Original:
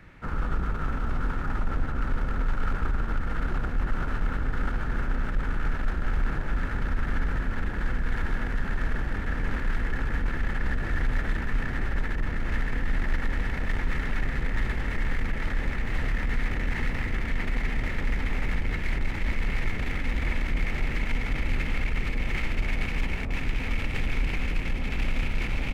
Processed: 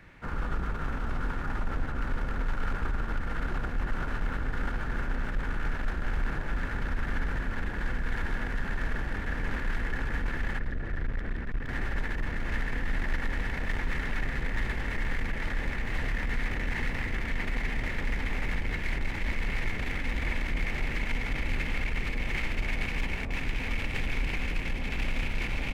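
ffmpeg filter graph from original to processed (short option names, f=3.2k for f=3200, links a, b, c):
-filter_complex "[0:a]asettb=1/sr,asplit=3[a][b][c];[a]atrim=end=10.594[d];[b]atrim=start=10.59:end=11.69,asetpts=PTS-STARTPTS,afade=t=in:d=0.004:c=qsin,afade=t=out:st=1.096:d=0.004:c=qsin,lowpass=f=1.1k:p=1,equalizer=f=860:t=o:w=0.74:g=-5.5,aeval=exprs='clip(val(0),-1,0.0473)':c=same[e];[c]atrim=start=11.686[f];[d][e]acrossfade=d=0.004:c1=hsin:c2=qsin[g];[g][f]acrossfade=d=0.004:c1=qsin:c2=hsin,lowshelf=f=400:g=-4,bandreject=f=1.3k:w=15"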